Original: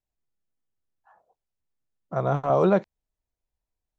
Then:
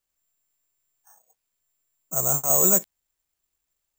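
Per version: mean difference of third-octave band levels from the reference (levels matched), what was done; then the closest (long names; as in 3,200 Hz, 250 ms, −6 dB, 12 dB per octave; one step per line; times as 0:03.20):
12.5 dB: high-shelf EQ 5,200 Hz +11.5 dB
in parallel at −10.5 dB: gain into a clipping stage and back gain 28.5 dB
on the sum: bad sample-rate conversion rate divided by 6×, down none, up zero stuff
level −7.5 dB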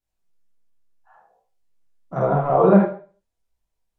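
5.0 dB: treble cut that deepens with the level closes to 1,700 Hz, closed at −22 dBFS
four-comb reverb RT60 0.38 s, combs from 33 ms, DRR −1.5 dB
micro pitch shift up and down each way 19 cents
level +5.5 dB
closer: second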